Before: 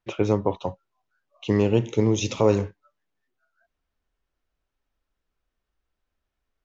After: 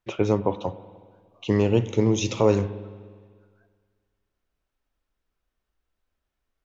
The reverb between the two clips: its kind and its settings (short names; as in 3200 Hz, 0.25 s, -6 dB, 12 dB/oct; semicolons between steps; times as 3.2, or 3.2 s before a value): spring tank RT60 1.8 s, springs 50/60 ms, chirp 70 ms, DRR 15 dB